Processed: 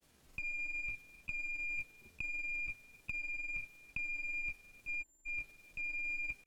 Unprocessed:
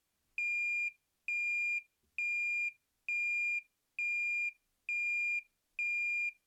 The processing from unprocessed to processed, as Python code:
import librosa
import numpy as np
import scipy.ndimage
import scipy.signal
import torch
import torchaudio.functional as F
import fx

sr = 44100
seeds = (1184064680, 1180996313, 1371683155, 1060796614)

p1 = fx.over_compress(x, sr, threshold_db=-44.0, ratio=-1.0)
p2 = p1 + fx.echo_single(p1, sr, ms=289, db=-20.0, dry=0)
p3 = fx.spec_erase(p2, sr, start_s=5.02, length_s=0.22, low_hz=1100.0, high_hz=6600.0)
p4 = fx.sample_hold(p3, sr, seeds[0], rate_hz=1200.0, jitter_pct=0)
p5 = p3 + (p4 * librosa.db_to_amplitude(-6.0))
p6 = fx.granulator(p5, sr, seeds[1], grain_ms=100.0, per_s=20.0, spray_ms=27.0, spread_st=0)
y = p6 * librosa.db_to_amplitude(5.0)